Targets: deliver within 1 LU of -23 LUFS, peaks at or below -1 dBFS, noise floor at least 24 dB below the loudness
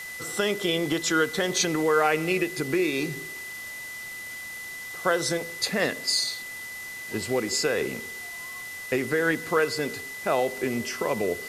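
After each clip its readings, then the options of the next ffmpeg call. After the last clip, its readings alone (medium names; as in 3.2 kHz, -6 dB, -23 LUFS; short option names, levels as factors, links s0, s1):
steady tone 2 kHz; tone level -36 dBFS; noise floor -38 dBFS; noise floor target -51 dBFS; loudness -27.0 LUFS; peak level -10.0 dBFS; loudness target -23.0 LUFS
-> -af "bandreject=f=2000:w=30"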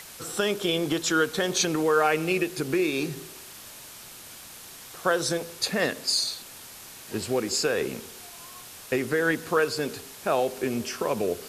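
steady tone not found; noise floor -45 dBFS; noise floor target -51 dBFS
-> -af "afftdn=nr=6:nf=-45"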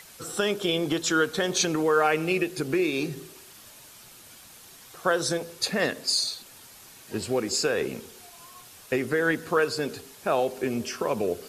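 noise floor -49 dBFS; noise floor target -51 dBFS
-> -af "afftdn=nr=6:nf=-49"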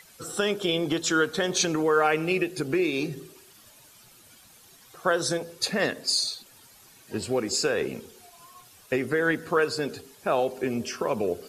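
noise floor -54 dBFS; loudness -26.5 LUFS; peak level -10.0 dBFS; loudness target -23.0 LUFS
-> -af "volume=1.5"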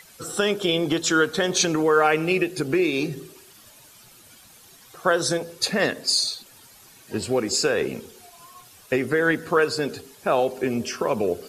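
loudness -23.0 LUFS; peak level -6.5 dBFS; noise floor -50 dBFS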